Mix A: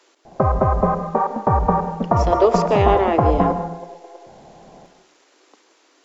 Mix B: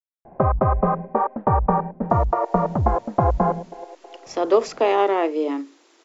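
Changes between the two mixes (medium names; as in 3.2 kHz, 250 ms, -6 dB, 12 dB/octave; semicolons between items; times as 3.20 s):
speech: entry +2.10 s; reverb: off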